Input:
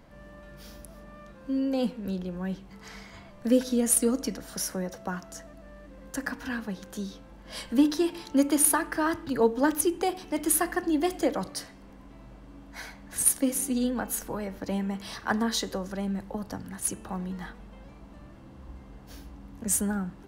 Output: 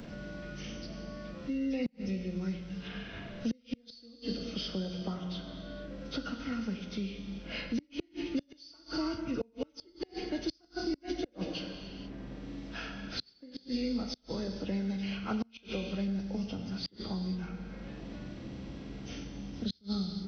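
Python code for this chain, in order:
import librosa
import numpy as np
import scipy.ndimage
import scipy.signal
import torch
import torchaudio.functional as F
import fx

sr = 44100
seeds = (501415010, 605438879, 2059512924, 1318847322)

y = fx.freq_compress(x, sr, knee_hz=1000.0, ratio=1.5)
y = fx.peak_eq(y, sr, hz=960.0, db=-13.0, octaves=1.2)
y = fx.rev_gated(y, sr, seeds[0], gate_ms=500, shape='falling', drr_db=4.5)
y = fx.gate_flip(y, sr, shuts_db=-18.0, range_db=-34)
y = fx.band_squash(y, sr, depth_pct=70)
y = y * librosa.db_to_amplitude(-2.5)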